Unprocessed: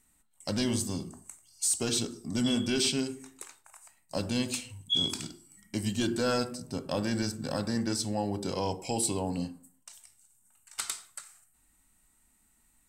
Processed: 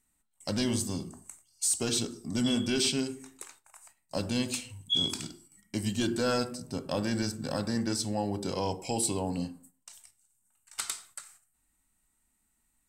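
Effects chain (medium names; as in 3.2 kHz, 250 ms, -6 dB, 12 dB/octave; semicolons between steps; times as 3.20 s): gate -56 dBFS, range -7 dB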